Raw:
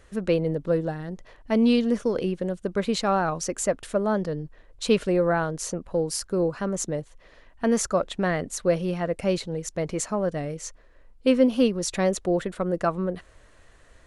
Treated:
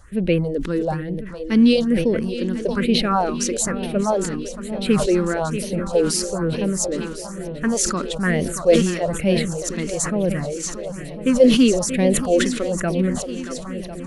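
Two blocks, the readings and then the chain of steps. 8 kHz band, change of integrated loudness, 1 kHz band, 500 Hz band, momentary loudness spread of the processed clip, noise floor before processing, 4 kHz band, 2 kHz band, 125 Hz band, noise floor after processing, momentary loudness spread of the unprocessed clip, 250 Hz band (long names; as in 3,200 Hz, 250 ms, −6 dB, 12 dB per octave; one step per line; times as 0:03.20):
+8.0 dB, +5.0 dB, +3.0 dB, +4.0 dB, 12 LU, −55 dBFS, +8.0 dB, +5.5 dB, +6.0 dB, −32 dBFS, 11 LU, +6.5 dB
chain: feedback echo with a long and a short gap by turns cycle 1,050 ms, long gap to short 1.5 to 1, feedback 59%, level −11.5 dB
all-pass phaser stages 4, 1.1 Hz, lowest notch 100–1,300 Hz
level that may fall only so fast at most 60 dB per second
level +6.5 dB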